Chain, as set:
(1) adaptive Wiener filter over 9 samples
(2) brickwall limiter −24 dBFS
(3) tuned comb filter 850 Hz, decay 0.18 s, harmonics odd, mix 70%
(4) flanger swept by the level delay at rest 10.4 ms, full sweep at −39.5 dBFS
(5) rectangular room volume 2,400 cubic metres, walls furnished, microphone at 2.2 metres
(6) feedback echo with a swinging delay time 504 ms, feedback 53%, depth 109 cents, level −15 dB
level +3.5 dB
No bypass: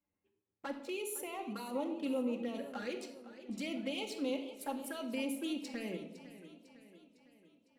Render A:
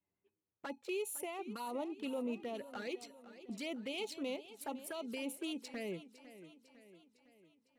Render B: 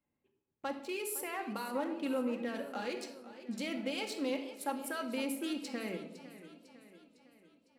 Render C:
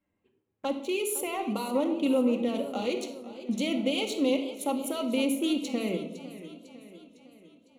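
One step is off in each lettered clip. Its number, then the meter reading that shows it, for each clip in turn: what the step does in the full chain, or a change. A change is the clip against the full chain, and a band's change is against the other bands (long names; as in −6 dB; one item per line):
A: 5, change in momentary loudness spread +1 LU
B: 4, 1 kHz band +2.5 dB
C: 3, 2 kHz band −3.0 dB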